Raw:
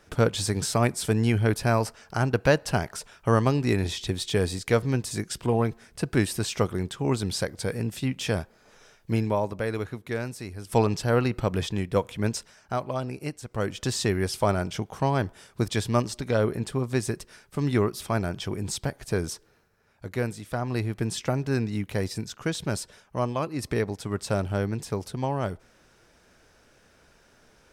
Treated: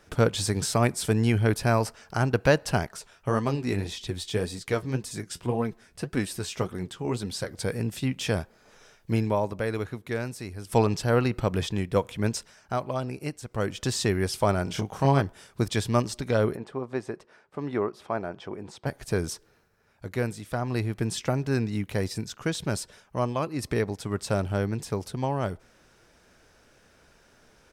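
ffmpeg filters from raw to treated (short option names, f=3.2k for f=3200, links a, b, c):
-filter_complex "[0:a]asettb=1/sr,asplit=3[a][b][c];[a]atrim=end=2.864[d];[b]atrim=start=2.86:end=7.51,asetpts=PTS-STARTPTS,afade=t=in:d=0.004:c=qsin,afade=t=out:st=4.646:d=0.004:c=qsin,flanger=delay=3.9:depth=8.1:regen=45:speed=1.8:shape=sinusoidal[e];[c]atrim=start=7.506[f];[d][e]acrossfade=d=0.004:c1=hsin:c2=qsin[g];[g][f]acrossfade=d=0.004:c1=qsin:c2=hsin,asplit=3[h][i][j];[h]afade=t=out:st=14.66:d=0.02[k];[i]asplit=2[l][m];[m]adelay=29,volume=-3dB[n];[l][n]amix=inputs=2:normalize=0,afade=t=in:st=14.66:d=0.02,afade=t=out:st=15.2:d=0.02[o];[j]afade=t=in:st=15.2:d=0.02[p];[k][o][p]amix=inputs=3:normalize=0,asplit=3[q][r][s];[q]afade=t=out:st=16.55:d=0.02[t];[r]bandpass=f=700:t=q:w=0.73,afade=t=in:st=16.55:d=0.02,afade=t=out:st=18.85:d=0.02[u];[s]afade=t=in:st=18.85:d=0.02[v];[t][u][v]amix=inputs=3:normalize=0"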